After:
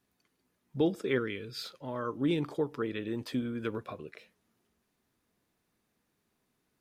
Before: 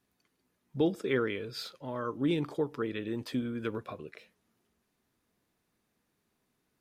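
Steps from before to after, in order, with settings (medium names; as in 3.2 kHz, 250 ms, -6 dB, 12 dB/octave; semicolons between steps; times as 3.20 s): 1.18–1.64 s: peaking EQ 750 Hz -12 dB 1.2 oct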